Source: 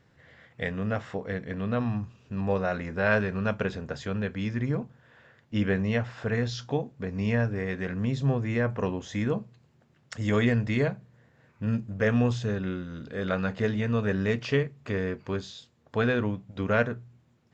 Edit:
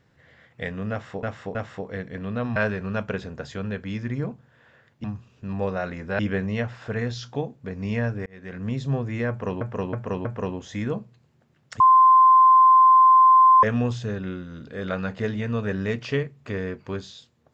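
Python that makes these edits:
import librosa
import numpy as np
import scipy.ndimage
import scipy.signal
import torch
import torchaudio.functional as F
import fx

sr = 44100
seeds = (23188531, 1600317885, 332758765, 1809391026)

y = fx.edit(x, sr, fx.repeat(start_s=0.91, length_s=0.32, count=3),
    fx.move(start_s=1.92, length_s=1.15, to_s=5.55),
    fx.fade_in_span(start_s=7.62, length_s=0.42),
    fx.repeat(start_s=8.65, length_s=0.32, count=4),
    fx.bleep(start_s=10.2, length_s=1.83, hz=1040.0, db=-10.5), tone=tone)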